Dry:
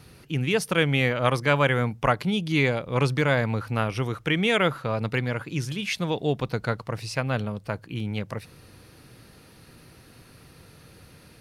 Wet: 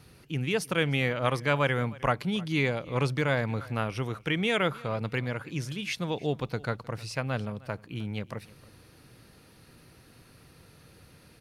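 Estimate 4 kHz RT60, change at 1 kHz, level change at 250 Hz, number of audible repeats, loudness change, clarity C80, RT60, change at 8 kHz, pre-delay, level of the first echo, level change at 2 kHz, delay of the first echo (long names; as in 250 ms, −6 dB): no reverb audible, −4.5 dB, −4.5 dB, 1, −4.5 dB, no reverb audible, no reverb audible, −4.5 dB, no reverb audible, −22.0 dB, −4.5 dB, 309 ms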